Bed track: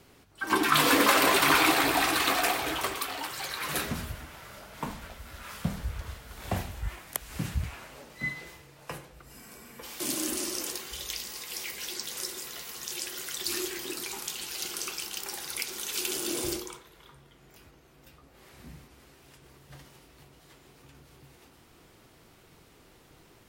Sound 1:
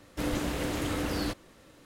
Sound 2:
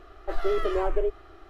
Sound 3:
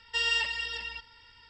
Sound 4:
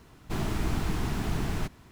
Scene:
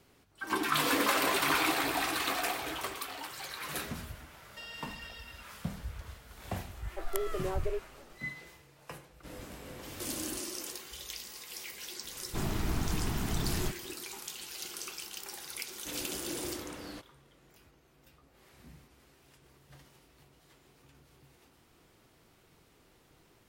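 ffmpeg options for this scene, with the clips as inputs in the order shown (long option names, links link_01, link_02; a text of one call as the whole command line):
ffmpeg -i bed.wav -i cue0.wav -i cue1.wav -i cue2.wav -i cue3.wav -filter_complex "[1:a]asplit=2[link_01][link_02];[0:a]volume=-6.5dB[link_03];[3:a]acompressor=threshold=-29dB:ratio=6:attack=3.2:release=140:knee=1:detection=peak[link_04];[link_01]asplit=2[link_05][link_06];[link_06]adelay=22,volume=-5dB[link_07];[link_05][link_07]amix=inputs=2:normalize=0[link_08];[4:a]acontrast=34[link_09];[link_02]lowshelf=frequency=120:gain=-9[link_10];[link_04]atrim=end=1.49,asetpts=PTS-STARTPTS,volume=-13dB,afade=type=in:duration=0.004:curve=hsin,afade=type=out:start_time=1.486:duration=0.004:curve=hsin,adelay=4430[link_11];[2:a]atrim=end=1.49,asetpts=PTS-STARTPTS,volume=-9dB,afade=type=in:duration=0.004:curve=hsin,afade=type=out:start_time=1.486:duration=0.004:curve=hsin,adelay=6690[link_12];[link_08]atrim=end=1.85,asetpts=PTS-STARTPTS,volume=-16dB,afade=type=in:duration=0.004:curve=hsin,afade=type=out:start_time=1.846:duration=0.004:curve=hsin,adelay=399546S[link_13];[link_09]atrim=end=1.91,asetpts=PTS-STARTPTS,volume=-8.5dB,afade=type=in:duration=0.004:curve=hsin,afade=type=out:start_time=1.906:duration=0.004:curve=hsin,adelay=12040[link_14];[link_10]atrim=end=1.85,asetpts=PTS-STARTPTS,volume=-12dB,afade=type=in:duration=0.004:curve=hsin,afade=type=out:start_time=1.846:duration=0.004:curve=hsin,adelay=15680[link_15];[link_03][link_11][link_12][link_13][link_14][link_15]amix=inputs=6:normalize=0" out.wav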